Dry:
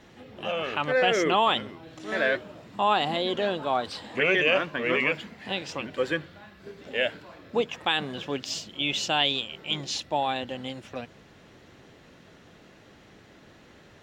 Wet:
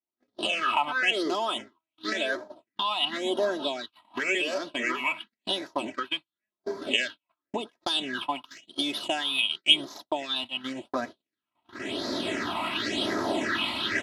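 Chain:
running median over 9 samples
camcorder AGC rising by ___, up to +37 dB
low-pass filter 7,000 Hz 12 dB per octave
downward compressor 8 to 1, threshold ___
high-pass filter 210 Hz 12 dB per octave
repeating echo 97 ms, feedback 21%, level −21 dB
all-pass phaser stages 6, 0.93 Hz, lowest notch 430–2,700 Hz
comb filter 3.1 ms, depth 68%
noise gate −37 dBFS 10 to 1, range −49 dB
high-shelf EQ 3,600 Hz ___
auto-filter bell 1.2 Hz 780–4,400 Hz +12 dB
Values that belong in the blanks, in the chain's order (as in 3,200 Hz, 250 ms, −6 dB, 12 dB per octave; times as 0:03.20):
14 dB per second, −26 dBFS, +10 dB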